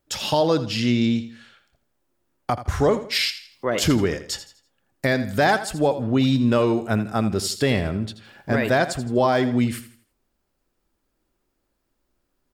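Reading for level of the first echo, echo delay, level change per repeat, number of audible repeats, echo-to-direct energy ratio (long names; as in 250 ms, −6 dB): −13.0 dB, 82 ms, −9.0 dB, 3, −12.5 dB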